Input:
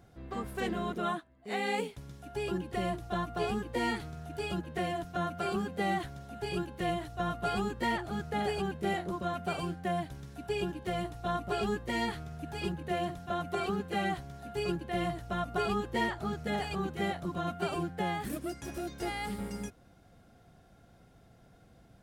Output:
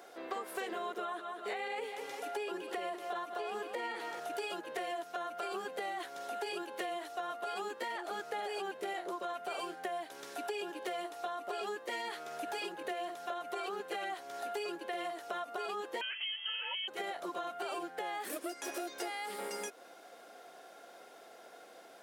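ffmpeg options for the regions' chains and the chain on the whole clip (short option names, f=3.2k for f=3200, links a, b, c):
-filter_complex "[0:a]asettb=1/sr,asplit=3[a][b][c];[a]atrim=end=0.754[d];[b]atrim=start=0.75:end=4.2,asetpts=PTS-STARTPTS,afade=t=in:d=0.004:c=qsin,afade=t=out:st=3.446:d=0.004:c=qsin,acrossover=split=3500[e][f];[f]acompressor=threshold=-54dB:ratio=4:attack=1:release=60[g];[e][g]amix=inputs=2:normalize=0,aecho=1:1:198|396|594|792:0.188|0.0791|0.0332|0.014,atrim=end_sample=152145[h];[c]atrim=start=4.196[i];[d][h]acrossfade=d=0.004:c1=hsin:c2=qsin[j];[j][i]acrossfade=d=0.004:c1=qsin:c2=hsin,asettb=1/sr,asplit=3[k][l][m];[k]atrim=end=16.014[n];[l]atrim=start=16.01:end=16.88,asetpts=PTS-STARTPTS,afade=t=in:d=0.004:c=qsin,afade=t=out:st=0.866:d=0.004:c=qsin,highpass=f=240:t=q:w=1.8,lowpass=f=2.9k:t=q:w=0.5098,lowpass=f=2.9k:t=q:w=0.6013,lowpass=f=2.9k:t=q:w=0.9,lowpass=f=2.9k:t=q:w=2.563,afreqshift=-3400[o];[m]atrim=start=16.876[p];[n][o]acrossfade=d=0.004:c1=hsin:c2=qsin[q];[q][p]acrossfade=d=0.004:c1=qsin:c2=hsin,highpass=f=400:w=0.5412,highpass=f=400:w=1.3066,alimiter=level_in=5.5dB:limit=-24dB:level=0:latency=1:release=48,volume=-5.5dB,acompressor=threshold=-48dB:ratio=6,volume=11dB"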